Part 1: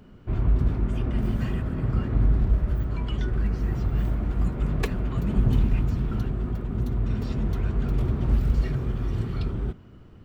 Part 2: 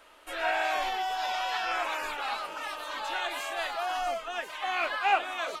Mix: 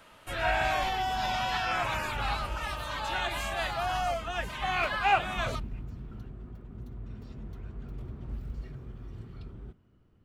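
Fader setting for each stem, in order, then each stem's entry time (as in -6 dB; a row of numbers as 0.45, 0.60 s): -16.0, +0.5 dB; 0.00, 0.00 s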